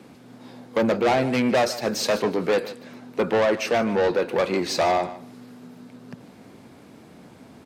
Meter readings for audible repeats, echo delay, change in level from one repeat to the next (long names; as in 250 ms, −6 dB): 2, 150 ms, −16.5 dB